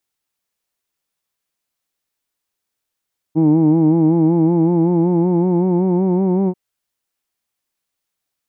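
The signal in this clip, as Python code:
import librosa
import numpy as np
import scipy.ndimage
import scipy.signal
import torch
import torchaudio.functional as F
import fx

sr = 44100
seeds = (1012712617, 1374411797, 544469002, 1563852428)

y = fx.vowel(sr, seeds[0], length_s=3.19, word="who'd", hz=155.0, glide_st=3.5, vibrato_hz=5.3, vibrato_st=0.75)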